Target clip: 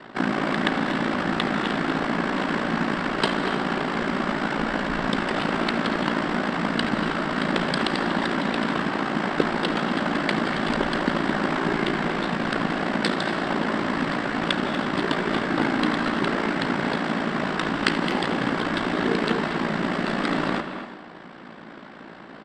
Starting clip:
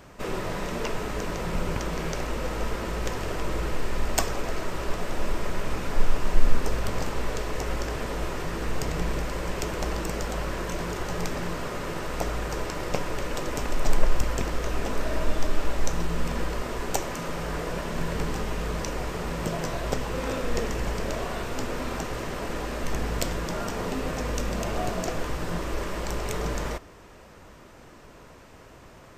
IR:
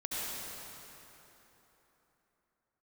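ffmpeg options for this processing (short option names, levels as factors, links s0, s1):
-filter_complex "[0:a]highpass=f=120:p=1,equalizer=f=3000:w=0.7:g=11.5,bandreject=f=4100:w=23,asplit=2[s0][s1];[s1]asoftclip=type=hard:threshold=0.0944,volume=0.668[s2];[s0][s2]amix=inputs=2:normalize=0,lowshelf=f=250:t=q:w=3:g=-9.5,asetrate=26222,aresample=44100,atempo=1.68179,adynamicsmooth=sensitivity=6.5:basefreq=5800,atempo=1.3,aeval=exprs='val(0)*sin(2*PI*28*n/s)':c=same,asplit=2[s3][s4];[1:a]atrim=start_sample=2205,afade=t=out:st=0.33:d=0.01,atrim=end_sample=14994,adelay=81[s5];[s4][s5]afir=irnorm=-1:irlink=0,volume=0.2[s6];[s3][s6]amix=inputs=2:normalize=0,aresample=22050,aresample=44100,asplit=2[s7][s8];[s8]adelay=240,highpass=300,lowpass=3400,asoftclip=type=hard:threshold=0.211,volume=0.355[s9];[s7][s9]amix=inputs=2:normalize=0,volume=1.33"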